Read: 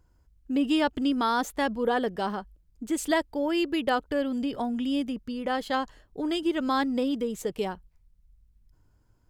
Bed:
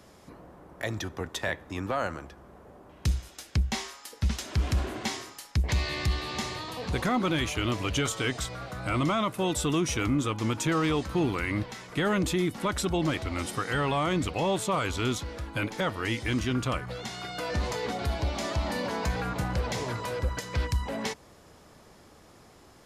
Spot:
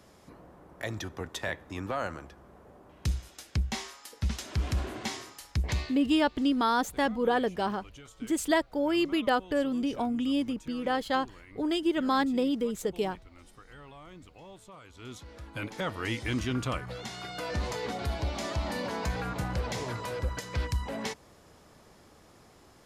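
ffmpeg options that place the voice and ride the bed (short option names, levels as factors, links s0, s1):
-filter_complex "[0:a]adelay=5400,volume=0.944[s0];[1:a]volume=7.08,afade=t=out:st=5.74:d=0.21:silence=0.105925,afade=t=in:st=14.93:d=1.11:silence=0.1[s1];[s0][s1]amix=inputs=2:normalize=0"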